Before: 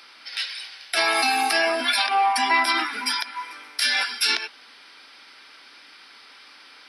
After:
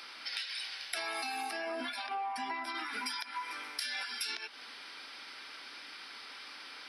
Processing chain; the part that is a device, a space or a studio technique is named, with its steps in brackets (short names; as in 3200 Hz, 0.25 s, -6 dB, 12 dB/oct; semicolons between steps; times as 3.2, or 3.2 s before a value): serial compression, peaks first (compressor 5:1, threshold -31 dBFS, peak gain reduction 14 dB; compressor 2:1, threshold -38 dBFS, peak gain reduction 6 dB); 1.5–2.75 tilt -2 dB/oct